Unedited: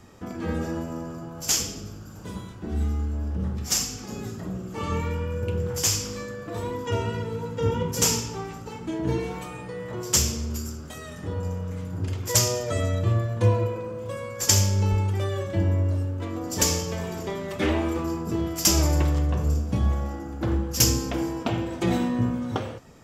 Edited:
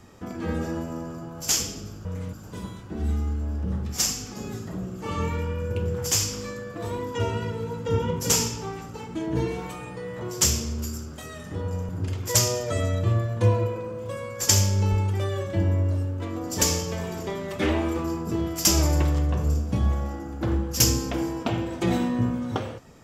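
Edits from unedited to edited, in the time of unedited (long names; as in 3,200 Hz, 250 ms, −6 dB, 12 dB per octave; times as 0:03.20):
0:11.61–0:11.89: move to 0:02.05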